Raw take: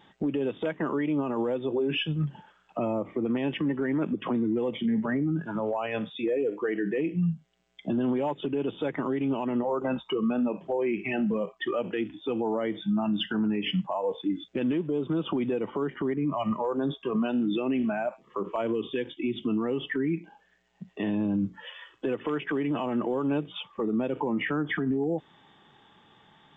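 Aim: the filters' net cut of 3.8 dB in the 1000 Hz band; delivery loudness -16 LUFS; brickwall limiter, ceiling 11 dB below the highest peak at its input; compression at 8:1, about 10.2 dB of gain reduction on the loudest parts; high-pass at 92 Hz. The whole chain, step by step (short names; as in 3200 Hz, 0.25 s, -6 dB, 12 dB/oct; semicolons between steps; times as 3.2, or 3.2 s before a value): HPF 92 Hz; bell 1000 Hz -5 dB; compressor 8:1, threshold -35 dBFS; gain +27 dB; limiter -8 dBFS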